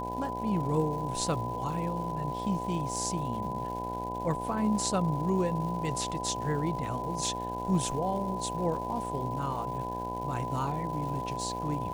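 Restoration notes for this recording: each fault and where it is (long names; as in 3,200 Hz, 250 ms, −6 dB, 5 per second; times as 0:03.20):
mains buzz 60 Hz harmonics 16 −38 dBFS
surface crackle 380 per second −41 dBFS
whistle 1,000 Hz −35 dBFS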